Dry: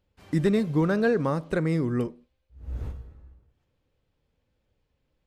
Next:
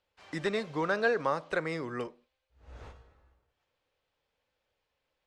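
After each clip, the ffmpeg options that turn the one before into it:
ffmpeg -i in.wav -filter_complex "[0:a]acrossover=split=510 7700:gain=0.126 1 0.0794[link_01][link_02][link_03];[link_01][link_02][link_03]amix=inputs=3:normalize=0,volume=1.5dB" out.wav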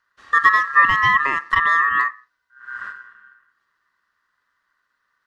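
ffmpeg -i in.wav -af "lowshelf=frequency=490:width_type=q:width=3:gain=12.5,aeval=exprs='val(0)*sin(2*PI*1500*n/s)':channel_layout=same,volume=6dB" out.wav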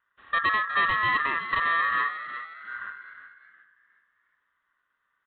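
ffmpeg -i in.wav -filter_complex "[0:a]aresample=8000,asoftclip=type=tanh:threshold=-13.5dB,aresample=44100,asplit=5[link_01][link_02][link_03][link_04][link_05];[link_02]adelay=362,afreqshift=68,volume=-11.5dB[link_06];[link_03]adelay=724,afreqshift=136,volume=-20.1dB[link_07];[link_04]adelay=1086,afreqshift=204,volume=-28.8dB[link_08];[link_05]adelay=1448,afreqshift=272,volume=-37.4dB[link_09];[link_01][link_06][link_07][link_08][link_09]amix=inputs=5:normalize=0,volume=-5dB" out.wav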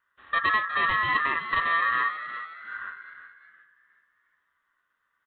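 ffmpeg -i in.wav -filter_complex "[0:a]asplit=2[link_01][link_02];[link_02]adelay=13,volume=-8.5dB[link_03];[link_01][link_03]amix=inputs=2:normalize=0" out.wav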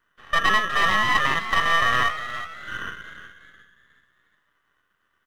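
ffmpeg -i in.wav -af "aeval=exprs='if(lt(val(0),0),0.251*val(0),val(0))':channel_layout=same,volume=7.5dB" out.wav

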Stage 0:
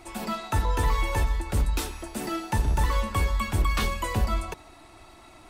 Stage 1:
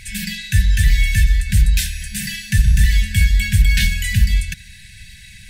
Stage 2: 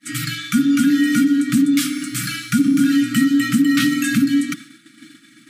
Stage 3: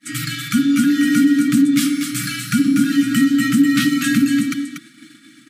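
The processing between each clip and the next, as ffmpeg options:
ffmpeg -i in.wav -filter_complex "[0:a]asplit=2[link_01][link_02];[link_02]alimiter=limit=-22.5dB:level=0:latency=1:release=386,volume=-1dB[link_03];[link_01][link_03]amix=inputs=2:normalize=0,afftfilt=real='re*(1-between(b*sr/4096,210,1500))':imag='im*(1-between(b*sr/4096,210,1500))':win_size=4096:overlap=0.75,volume=8.5dB" out.wav
ffmpeg -i in.wav -af "acompressor=threshold=-13dB:ratio=6,afreqshift=-330,agate=range=-33dB:threshold=-32dB:ratio=3:detection=peak,volume=1dB" out.wav
ffmpeg -i in.wav -af "aecho=1:1:239:0.447" out.wav

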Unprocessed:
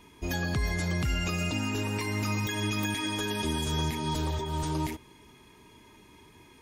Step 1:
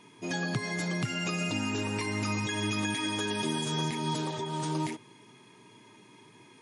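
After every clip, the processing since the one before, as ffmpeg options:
ffmpeg -i in.wav -af "afftfilt=real='re*between(b*sr/4096,100,11000)':imag='im*between(b*sr/4096,100,11000)':win_size=4096:overlap=0.75" out.wav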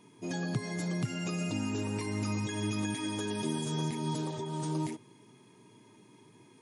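ffmpeg -i in.wav -af "equalizer=frequency=2200:width=0.37:gain=-8.5" out.wav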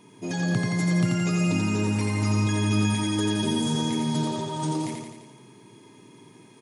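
ffmpeg -i in.wav -af "aecho=1:1:86|172|258|344|430|516|602|688:0.668|0.394|0.233|0.137|0.081|0.0478|0.0282|0.0166,volume=5.5dB" out.wav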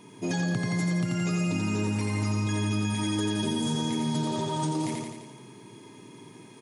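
ffmpeg -i in.wav -af "acompressor=threshold=-27dB:ratio=6,volume=2.5dB" out.wav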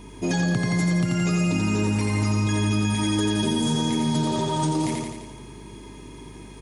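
ffmpeg -i in.wav -af "aeval=exprs='val(0)+0.00355*(sin(2*PI*50*n/s)+sin(2*PI*2*50*n/s)/2+sin(2*PI*3*50*n/s)/3+sin(2*PI*4*50*n/s)/4+sin(2*PI*5*50*n/s)/5)':channel_layout=same,volume=5dB" out.wav

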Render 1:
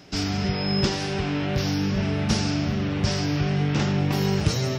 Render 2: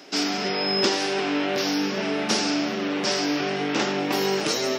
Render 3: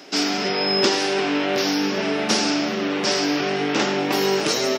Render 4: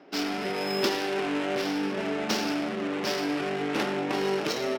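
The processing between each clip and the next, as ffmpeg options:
ffmpeg -i in.wav -af "highpass=frequency=270:width=0.5412,highpass=frequency=270:width=1.3066,volume=4.5dB" out.wav
ffmpeg -i in.wav -filter_complex "[0:a]asplit=2[link_01][link_02];[link_02]adelay=105,volume=-14dB,highshelf=frequency=4000:gain=-2.36[link_03];[link_01][link_03]amix=inputs=2:normalize=0,volume=3dB" out.wav
ffmpeg -i in.wav -af "adynamicsmooth=sensitivity=2:basefreq=1600,volume=-6.5dB" out.wav

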